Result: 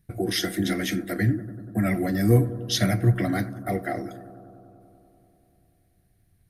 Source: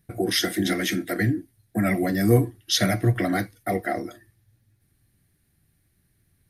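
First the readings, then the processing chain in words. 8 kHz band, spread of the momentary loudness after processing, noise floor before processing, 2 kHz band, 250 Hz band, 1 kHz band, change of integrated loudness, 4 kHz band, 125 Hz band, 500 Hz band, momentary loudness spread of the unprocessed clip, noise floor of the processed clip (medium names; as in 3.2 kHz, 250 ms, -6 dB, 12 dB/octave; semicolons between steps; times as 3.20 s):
-3.5 dB, 11 LU, -68 dBFS, -3.5 dB, -1.0 dB, -3.0 dB, -1.0 dB, -3.5 dB, +2.0 dB, -2.5 dB, 10 LU, -65 dBFS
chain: bass shelf 150 Hz +8.5 dB; on a send: bucket-brigade echo 96 ms, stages 1024, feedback 82%, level -16 dB; on the sum: trim -3.5 dB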